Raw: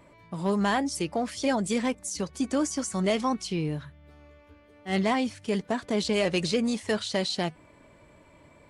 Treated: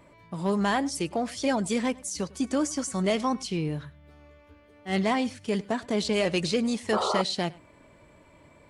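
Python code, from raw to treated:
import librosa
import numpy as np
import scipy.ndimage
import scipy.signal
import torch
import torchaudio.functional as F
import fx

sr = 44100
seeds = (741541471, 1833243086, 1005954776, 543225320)

y = x + 10.0 ** (-22.5 / 20.0) * np.pad(x, (int(101 * sr / 1000.0), 0))[:len(x)]
y = fx.spec_paint(y, sr, seeds[0], shape='noise', start_s=6.92, length_s=0.3, low_hz=350.0, high_hz=1400.0, level_db=-27.0)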